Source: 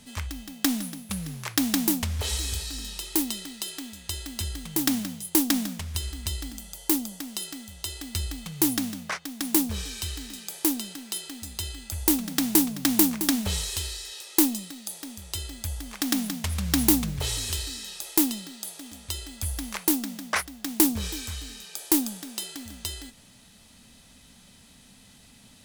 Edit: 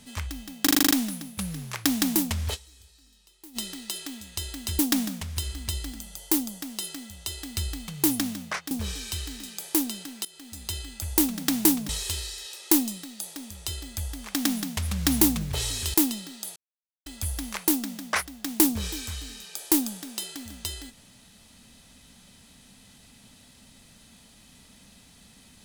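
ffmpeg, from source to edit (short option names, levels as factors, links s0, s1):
-filter_complex "[0:a]asplit=17[s0][s1][s2][s3][s4][s5][s6][s7][s8][s9][s10][s11][s12][s13][s14][s15][s16];[s0]atrim=end=0.672[s17];[s1]atrim=start=0.628:end=0.672[s18];[s2]atrim=start=0.628:end=0.672[s19];[s3]atrim=start=0.628:end=0.672[s20];[s4]atrim=start=0.628:end=0.672[s21];[s5]atrim=start=0.628:end=0.672[s22];[s6]atrim=start=0.628:end=0.672[s23];[s7]atrim=start=0.628:end=2.4,asetpts=PTS-STARTPTS,afade=t=out:st=1.632:d=0.14:c=exp:silence=0.0668344[s24];[s8]atrim=start=2.4:end=3.15,asetpts=PTS-STARTPTS,volume=0.0668[s25];[s9]atrim=start=3.15:end=4.512,asetpts=PTS-STARTPTS,afade=t=in:d=0.14:c=exp:silence=0.0668344[s26];[s10]atrim=start=5.368:end=9.292[s27];[s11]atrim=start=9.608:end=11.15,asetpts=PTS-STARTPTS,afade=t=out:st=1.538:d=0.004:c=hsin:silence=0.125893[s28];[s12]atrim=start=11.15:end=12.792,asetpts=PTS-STARTPTS,afade=t=in:d=0.43:silence=0.125893[s29];[s13]atrim=start=13.558:end=17.612[s30];[s14]atrim=start=18.138:end=18.76,asetpts=PTS-STARTPTS,afade=t=out:st=0.618:d=0.004:c=hsin[s31];[s15]atrim=start=18.76:end=19.26,asetpts=PTS-STARTPTS,volume=0[s32];[s16]atrim=start=19.26,asetpts=PTS-STARTPTS,afade=t=in:d=0.004:c=hsin[s33];[s17][s18]acrossfade=d=0.004:c1=hsin:c2=hsin[s34];[s34][s19]acrossfade=d=0.004:c1=hsin:c2=hsin[s35];[s35][s20]acrossfade=d=0.004:c1=hsin:c2=hsin[s36];[s36][s21]acrossfade=d=0.004:c1=hsin:c2=hsin[s37];[s37][s22]acrossfade=d=0.004:c1=hsin:c2=hsin[s38];[s38][s23]acrossfade=d=0.004:c1=hsin:c2=hsin[s39];[s24][s25][s26]concat=n=3:v=0:a=1[s40];[s39][s40]acrossfade=d=0.004:c1=hsin:c2=hsin[s41];[s41][s27]acrossfade=d=0.004:c1=hsin:c2=hsin[s42];[s28][s29]concat=n=2:v=0:a=1[s43];[s42][s43]acrossfade=d=0.004:c1=hsin:c2=hsin[s44];[s44][s30]acrossfade=d=0.004:c1=hsin:c2=hsin[s45];[s31][s32][s33]concat=n=3:v=0:a=1[s46];[s45][s46]acrossfade=d=0.004:c1=hsin:c2=hsin"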